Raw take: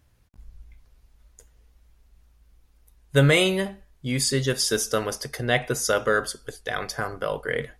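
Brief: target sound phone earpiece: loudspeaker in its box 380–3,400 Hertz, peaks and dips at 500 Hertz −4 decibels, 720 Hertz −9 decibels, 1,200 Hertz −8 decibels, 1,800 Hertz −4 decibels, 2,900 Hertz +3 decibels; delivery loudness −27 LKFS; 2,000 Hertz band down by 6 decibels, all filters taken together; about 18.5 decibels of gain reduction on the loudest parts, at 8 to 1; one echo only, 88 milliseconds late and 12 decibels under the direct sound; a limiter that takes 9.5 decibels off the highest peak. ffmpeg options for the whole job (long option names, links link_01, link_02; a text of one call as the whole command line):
ffmpeg -i in.wav -af "equalizer=frequency=2000:width_type=o:gain=-4.5,acompressor=threshold=-33dB:ratio=8,alimiter=level_in=6dB:limit=-24dB:level=0:latency=1,volume=-6dB,highpass=380,equalizer=frequency=500:width_type=q:width=4:gain=-4,equalizer=frequency=720:width_type=q:width=4:gain=-9,equalizer=frequency=1200:width_type=q:width=4:gain=-8,equalizer=frequency=1800:width_type=q:width=4:gain=-4,equalizer=frequency=2900:width_type=q:width=4:gain=3,lowpass=frequency=3400:width=0.5412,lowpass=frequency=3400:width=1.3066,aecho=1:1:88:0.251,volume=20.5dB" out.wav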